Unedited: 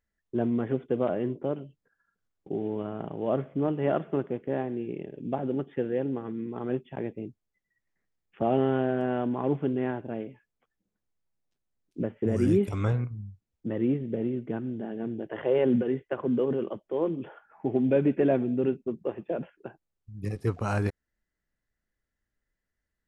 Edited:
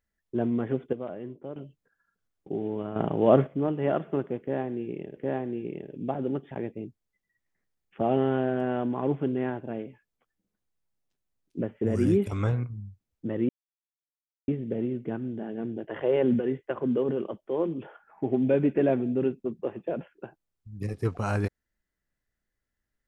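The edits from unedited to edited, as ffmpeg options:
ffmpeg -i in.wav -filter_complex "[0:a]asplit=8[link_01][link_02][link_03][link_04][link_05][link_06][link_07][link_08];[link_01]atrim=end=0.932[link_09];[link_02]atrim=start=0.928:end=1.562,asetpts=PTS-STARTPTS,volume=-9dB[link_10];[link_03]atrim=start=1.558:end=2.962[link_11];[link_04]atrim=start=2.958:end=3.472,asetpts=PTS-STARTPTS,volume=8.5dB[link_12];[link_05]atrim=start=3.468:end=5.172[link_13];[link_06]atrim=start=4.408:end=5.752[link_14];[link_07]atrim=start=6.918:end=13.9,asetpts=PTS-STARTPTS,afade=type=out:start_time=6.978:duration=0.004:curve=hsin,apad=pad_dur=0.99[link_15];[link_08]atrim=start=13.9,asetpts=PTS-STARTPTS,afade=type=in:duration=0.004:curve=hsin[link_16];[link_09][link_10]acrossfade=duration=0.004:curve1=hsin:curve2=hsin[link_17];[link_17][link_11]acrossfade=duration=0.004:curve1=hsin:curve2=hsin[link_18];[link_18][link_12]acrossfade=duration=0.004:curve1=hsin:curve2=hsin[link_19];[link_19][link_13]acrossfade=duration=0.004:curve1=hsin:curve2=hsin[link_20];[link_20][link_14]acrossfade=duration=0.004:curve1=hsin:curve2=hsin[link_21];[link_15][link_16]concat=n=2:v=0:a=1[link_22];[link_21][link_22]acrossfade=duration=0.004:curve1=hsin:curve2=hsin" out.wav

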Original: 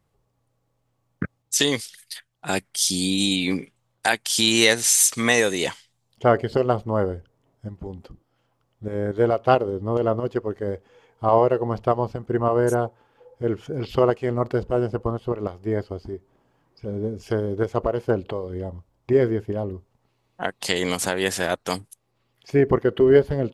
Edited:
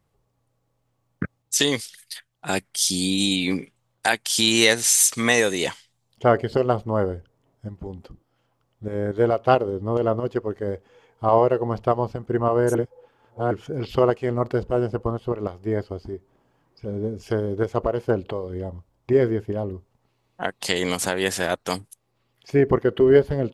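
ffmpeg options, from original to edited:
ffmpeg -i in.wav -filter_complex "[0:a]asplit=3[link_01][link_02][link_03];[link_01]atrim=end=12.752[link_04];[link_02]atrim=start=12.748:end=13.512,asetpts=PTS-STARTPTS,areverse[link_05];[link_03]atrim=start=13.508[link_06];[link_04][link_05]acrossfade=duration=0.004:curve1=hsin:curve2=hsin[link_07];[link_07][link_06]acrossfade=duration=0.004:curve1=hsin:curve2=hsin" out.wav

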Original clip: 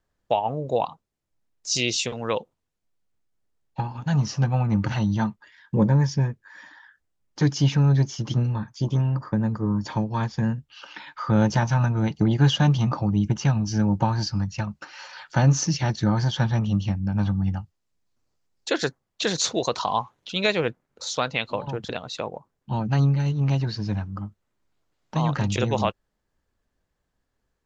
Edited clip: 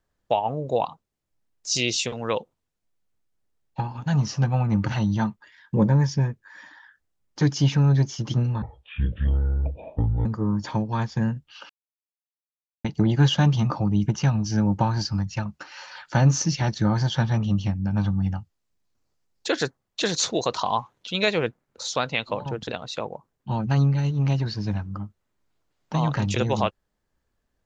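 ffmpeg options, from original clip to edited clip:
ffmpeg -i in.wav -filter_complex "[0:a]asplit=5[link_01][link_02][link_03][link_04][link_05];[link_01]atrim=end=8.624[link_06];[link_02]atrim=start=8.62:end=9.47,asetpts=PTS-STARTPTS,asetrate=22932,aresample=44100[link_07];[link_03]atrim=start=9.466:end=10.91,asetpts=PTS-STARTPTS,afade=type=out:start_time=1.44:duration=0.004:curve=hsin[link_08];[link_04]atrim=start=10.91:end=12.06,asetpts=PTS-STARTPTS,volume=0[link_09];[link_05]atrim=start=12.06,asetpts=PTS-STARTPTS,afade=type=in:duration=0.004:curve=hsin[link_10];[link_06][link_07]acrossfade=duration=0.004:curve1=hsin:curve2=hsin[link_11];[link_08][link_09][link_10]concat=n=3:v=0:a=1[link_12];[link_11][link_12]acrossfade=duration=0.004:curve1=hsin:curve2=hsin" out.wav

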